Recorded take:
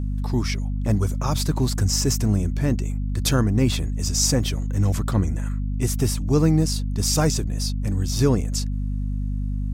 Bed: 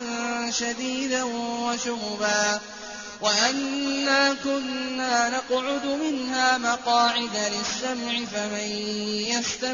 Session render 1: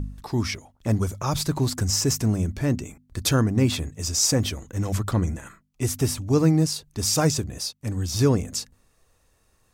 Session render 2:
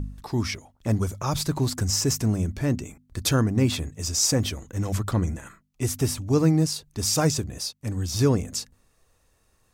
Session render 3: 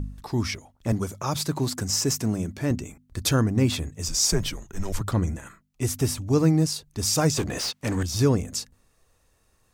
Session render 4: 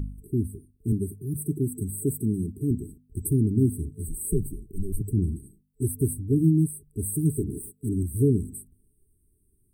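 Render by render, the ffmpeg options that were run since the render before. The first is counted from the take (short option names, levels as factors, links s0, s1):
-af "bandreject=f=50:t=h:w=4,bandreject=f=100:t=h:w=4,bandreject=f=150:t=h:w=4,bandreject=f=200:t=h:w=4,bandreject=f=250:t=h:w=4"
-af "volume=0.891"
-filter_complex "[0:a]asettb=1/sr,asplit=3[s0][s1][s2];[s0]atrim=end=0.924[s3];[s1]atrim=start=0.92:end=2.71,asetpts=PTS-STARTPTS,afade=t=in:d=0.004:c=qsin,afade=t=out:st=1.786:d=0.004:c=qsin,highpass=130[s4];[s2]atrim=start=2.706[s5];[s3][s4]acrossfade=d=0.004:c1=hsin:c2=qsin[s6];[s6][s5]acrossfade=d=0.004:c1=qsin:c2=hsin,asettb=1/sr,asplit=3[s7][s8][s9];[s7]atrim=end=4.084[s10];[s8]atrim=start=4.08:end=5.01,asetpts=PTS-STARTPTS,afade=t=in:d=0.004:c=qsin,afade=t=out:st=0.926:d=0.004:c=qsin,afreqshift=-110[s11];[s9]atrim=start=5.006[s12];[s10][s11]acrossfade=d=0.004:c1=hsin:c2=qsin[s13];[s13][s12]acrossfade=d=0.004:c1=qsin:c2=hsin,asettb=1/sr,asplit=3[s14][s15][s16];[s14]atrim=end=7.374[s17];[s15]atrim=start=7.37:end=8.03,asetpts=PTS-STARTPTS,afade=t=in:d=0.004:c=qsin,afade=t=out:st=0.656:d=0.004:c=qsin,asplit=2[s18][s19];[s19]highpass=f=720:p=1,volume=17.8,asoftclip=type=tanh:threshold=0.15[s20];[s18][s20]amix=inputs=2:normalize=0,lowpass=f=3000:p=1,volume=0.501[s21];[s16]atrim=start=8.026[s22];[s17][s21]acrossfade=d=0.004:c1=hsin:c2=qsin[s23];[s23][s22]acrossfade=d=0.004:c1=qsin:c2=hsin"
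-af "afftfilt=real='re*(1-between(b*sr/4096,440,8000))':imag='im*(1-between(b*sr/4096,440,8000))':win_size=4096:overlap=0.75"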